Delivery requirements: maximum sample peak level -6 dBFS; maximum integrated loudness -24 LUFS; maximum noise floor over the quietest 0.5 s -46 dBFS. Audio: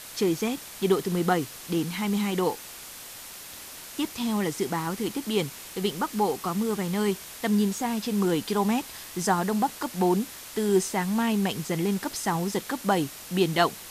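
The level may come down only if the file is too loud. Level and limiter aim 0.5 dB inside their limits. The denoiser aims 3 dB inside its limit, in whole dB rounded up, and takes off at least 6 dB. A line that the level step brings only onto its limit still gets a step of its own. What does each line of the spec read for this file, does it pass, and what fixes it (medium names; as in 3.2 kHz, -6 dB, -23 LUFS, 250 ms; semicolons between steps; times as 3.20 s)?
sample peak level -9.0 dBFS: pass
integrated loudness -27.0 LUFS: pass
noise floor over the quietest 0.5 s -42 dBFS: fail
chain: noise reduction 7 dB, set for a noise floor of -42 dBFS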